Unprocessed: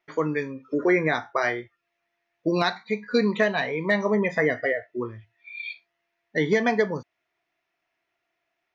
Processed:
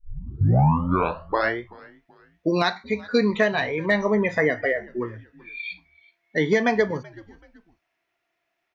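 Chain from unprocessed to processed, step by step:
turntable start at the beginning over 1.60 s
echo with shifted repeats 380 ms, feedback 36%, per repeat −93 Hz, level −23 dB
level +1.5 dB

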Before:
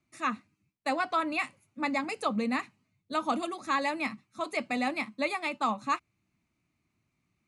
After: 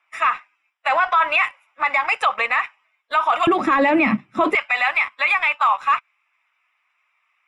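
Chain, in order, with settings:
spectral magnitudes quantised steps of 15 dB
high-pass filter 850 Hz 24 dB per octave, from 0:03.47 130 Hz, from 0:04.55 1,000 Hz
leveller curve on the samples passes 1
Savitzky-Golay smoothing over 25 samples
boost into a limiter +29.5 dB
level −8.5 dB

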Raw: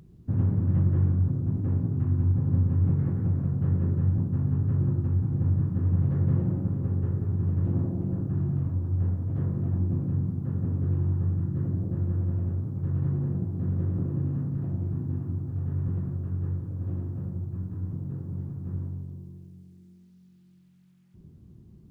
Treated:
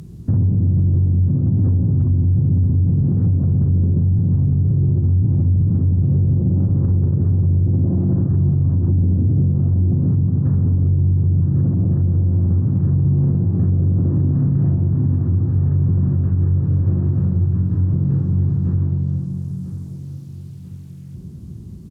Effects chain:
0:08.87–0:09.47: parametric band 250 Hz +15 dB → +6 dB 2.2 octaves
in parallel at −5 dB: soft clipping −28 dBFS, distortion −8 dB
on the sum: high-pass filter 47 Hz 24 dB per octave
bass and treble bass +5 dB, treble +9 dB
treble cut that deepens with the level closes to 530 Hz, closed at −14.5 dBFS
on a send: repeating echo 990 ms, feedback 46%, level −12 dB
on the sum: brickwall limiter −18 dBFS, peak gain reduction 13 dB
level +8 dB

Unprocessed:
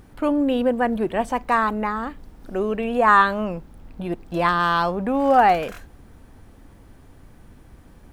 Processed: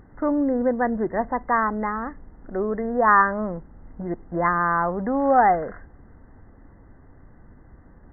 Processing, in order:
linear-phase brick-wall low-pass 2,100 Hz
level −1.5 dB

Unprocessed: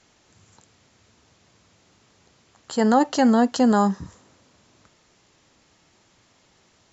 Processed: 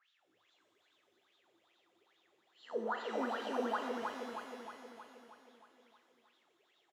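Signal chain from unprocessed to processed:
peak hold with a rise ahead of every peak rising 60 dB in 0.42 s
notch filter 440 Hz, Q 12
LFO wah 2.4 Hz 330–3,700 Hz, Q 17
repeating echo 315 ms, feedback 58%, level −4.5 dB
reverb with rising layers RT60 1.5 s, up +12 semitones, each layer −8 dB, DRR 6 dB
level −1 dB

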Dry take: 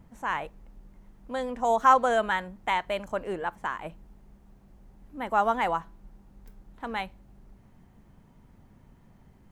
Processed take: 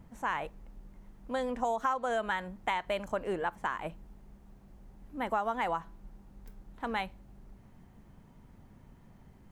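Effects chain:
downward compressor 12 to 1, threshold −27 dBFS, peak gain reduction 14 dB

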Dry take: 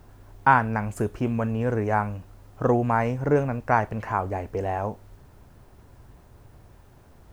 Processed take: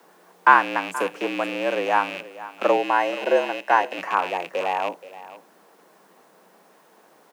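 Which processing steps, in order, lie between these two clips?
loose part that buzzes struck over −33 dBFS, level −24 dBFS
high-pass filter 330 Hz 12 dB per octave
frequency shifter −72 Hz
0:02.76–0:03.98: notch comb filter 1,100 Hz
frequency shifter +150 Hz
single-tap delay 477 ms −16.5 dB
level +4 dB

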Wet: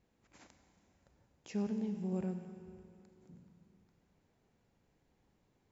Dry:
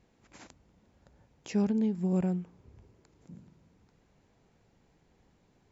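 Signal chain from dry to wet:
four-comb reverb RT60 2.7 s, combs from 31 ms, DRR 7 dB
level −8.5 dB

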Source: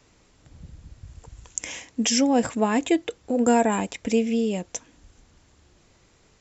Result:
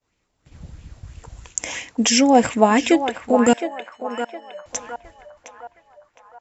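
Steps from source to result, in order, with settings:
downward expander −46 dBFS
0:03.53–0:04.66: tuned comb filter 600 Hz, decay 0.26 s, harmonics odd, mix 100%
on a send: feedback echo with a band-pass in the loop 713 ms, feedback 51%, band-pass 1,100 Hz, level −6.5 dB
on the sum: auto-filter bell 3 Hz 650–2,800 Hz +8 dB
level +4.5 dB

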